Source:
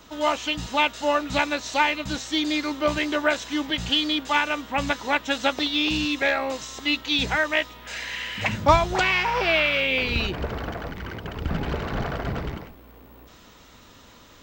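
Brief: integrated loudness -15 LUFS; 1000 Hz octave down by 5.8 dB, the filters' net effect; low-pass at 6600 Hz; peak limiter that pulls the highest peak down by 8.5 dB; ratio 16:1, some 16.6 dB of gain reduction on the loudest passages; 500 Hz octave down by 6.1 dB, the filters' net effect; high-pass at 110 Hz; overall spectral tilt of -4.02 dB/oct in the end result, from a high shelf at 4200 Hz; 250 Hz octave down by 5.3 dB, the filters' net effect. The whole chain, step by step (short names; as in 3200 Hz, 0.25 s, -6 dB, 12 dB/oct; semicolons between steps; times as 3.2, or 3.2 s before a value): HPF 110 Hz; LPF 6600 Hz; bell 250 Hz -4.5 dB; bell 500 Hz -5 dB; bell 1000 Hz -5 dB; high shelf 4200 Hz -6.5 dB; compressor 16:1, threshold -33 dBFS; gain +24 dB; limiter -5 dBFS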